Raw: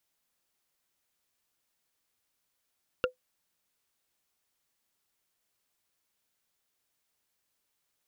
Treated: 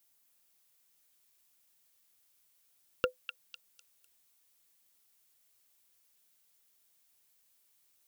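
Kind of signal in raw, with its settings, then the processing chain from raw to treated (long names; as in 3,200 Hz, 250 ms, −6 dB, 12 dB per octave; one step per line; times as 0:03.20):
struck wood, lowest mode 506 Hz, modes 3, decay 0.12 s, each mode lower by 1 dB, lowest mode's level −20 dB
high-shelf EQ 6,900 Hz +12 dB
echo through a band-pass that steps 251 ms, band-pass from 2,700 Hz, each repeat 0.7 octaves, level −2.5 dB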